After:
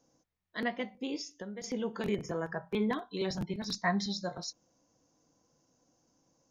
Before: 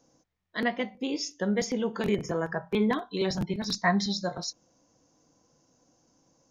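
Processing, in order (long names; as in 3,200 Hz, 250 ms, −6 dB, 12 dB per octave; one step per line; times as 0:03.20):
0:01.21–0:01.64: downward compressor 5 to 1, threshold −35 dBFS, peak gain reduction 11.5 dB
level −5.5 dB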